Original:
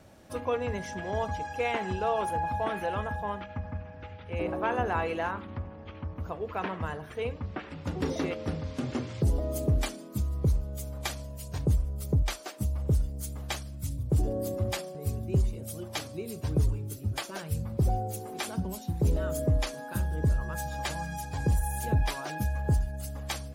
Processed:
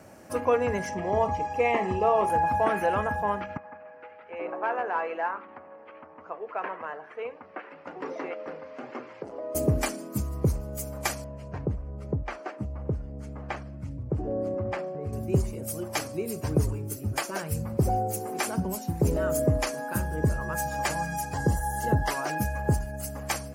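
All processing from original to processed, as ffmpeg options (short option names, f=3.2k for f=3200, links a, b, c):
-filter_complex "[0:a]asettb=1/sr,asplit=3[a][b][c];[a]atrim=end=0.894[d];[b]atrim=start=0.89:end=2.3,asetpts=PTS-STARTPTS,afade=t=in:d=0.004:c=qsin,afade=t=out:st=1.406:d=0.004:c=qsin,asuperstop=centerf=1500:order=12:qfactor=4.3,highshelf=f=4.6k:g=-11,asplit=2[e][f];[f]adelay=34,volume=-11.5dB[g];[e][g]amix=inputs=2:normalize=0,atrim=end_sample=62181[h];[c]atrim=start=2.296[i];[d][h]acrossfade=d=0.004:c1=hsin:c2=qsin[j];[j][i]acrossfade=d=0.004:c1=qsin:c2=hsin,asettb=1/sr,asplit=3[k][l][m];[k]atrim=end=3.574[n];[l]atrim=start=3.57:end=9.55,asetpts=PTS-STARTPTS,afade=t=in:d=0.004:c=qsin,afade=t=out:st=5.976:d=0.004:c=qsin,volume=21.5dB,asoftclip=hard,volume=-21.5dB,highpass=440,lowpass=2.5k,flanger=delay=0.7:depth=1.4:regen=74:speed=1.1:shape=triangular[o];[m]atrim=start=9.546[p];[n][o]acrossfade=d=0.004:c1=hsin:c2=qsin[q];[q][p]acrossfade=d=0.004:c1=qsin:c2=hsin,asettb=1/sr,asplit=3[r][s][t];[r]atrim=end=11.244[u];[s]atrim=start=11.24:end=15.13,asetpts=PTS-STARTPTS,afade=t=in:d=0.004:c=qsin,afade=t=out:st=3.886:d=0.004:c=qsin,lowpass=2.1k,acompressor=threshold=-36dB:ratio=1.5:attack=3.2:release=140:knee=1:detection=peak[v];[t]atrim=start=15.126[w];[u][v]acrossfade=d=0.004:c1=hsin:c2=qsin[x];[x][w]acrossfade=d=0.004:c1=qsin:c2=hsin,asettb=1/sr,asplit=3[y][z][aa];[y]atrim=end=21.344[ab];[z]atrim=start=21.34:end=22.11,asetpts=PTS-STARTPTS,afade=t=in:d=0.004:c=qsin,afade=t=out:st=0.766:d=0.004:c=qsin,acrossover=split=6100[ac][ad];[ad]acompressor=threshold=-47dB:ratio=4:attack=1:release=60[ae];[ac][ae]amix=inputs=2:normalize=0,asuperstop=centerf=2400:order=8:qfactor=5.4[af];[aa]atrim=start=22.106[ag];[ab][af]acrossfade=d=0.004:c1=hsin:c2=qsin[ah];[ah][ag]acrossfade=d=0.004:c1=qsin:c2=hsin,highpass=f=190:p=1,equalizer=f=3.6k:t=o:w=0.48:g=-13,volume=7dB"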